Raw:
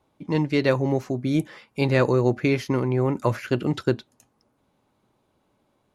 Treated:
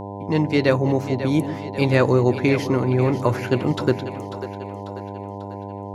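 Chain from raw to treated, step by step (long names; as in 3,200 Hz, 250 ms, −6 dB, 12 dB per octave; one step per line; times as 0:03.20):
echo with a time of its own for lows and highs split 350 Hz, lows 141 ms, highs 543 ms, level −11.5 dB
hum with harmonics 100 Hz, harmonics 10, −35 dBFS −2 dB per octave
level +2.5 dB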